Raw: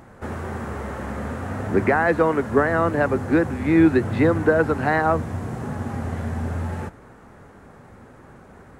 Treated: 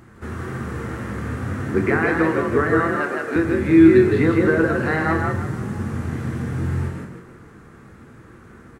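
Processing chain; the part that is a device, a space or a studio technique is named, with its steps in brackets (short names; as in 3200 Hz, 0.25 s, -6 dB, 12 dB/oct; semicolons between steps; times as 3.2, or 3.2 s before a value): 2.8–3.36 HPF 410 Hz 12 dB/oct; band shelf 680 Hz -8.5 dB 1.1 oct; frequency-shifting echo 0.159 s, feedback 36%, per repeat +46 Hz, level -3.5 dB; doubler 24 ms -11.5 dB; bathroom (reverb RT60 0.70 s, pre-delay 3 ms, DRR 6 dB); gain -1 dB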